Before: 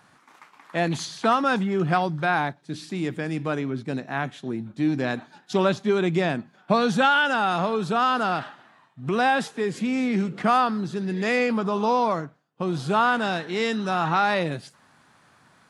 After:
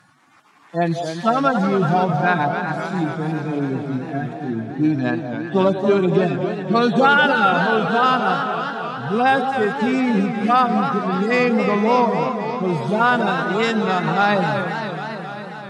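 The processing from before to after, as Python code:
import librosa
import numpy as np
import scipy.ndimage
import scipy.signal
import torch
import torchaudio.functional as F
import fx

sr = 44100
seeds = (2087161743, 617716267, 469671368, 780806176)

y = fx.hpss_only(x, sr, part='harmonic')
y = fx.echo_stepped(y, sr, ms=190, hz=600.0, octaves=1.4, feedback_pct=70, wet_db=-5.5)
y = fx.echo_warbled(y, sr, ms=270, feedback_pct=73, rate_hz=2.8, cents=139, wet_db=-8.5)
y = y * 10.0 ** (5.0 / 20.0)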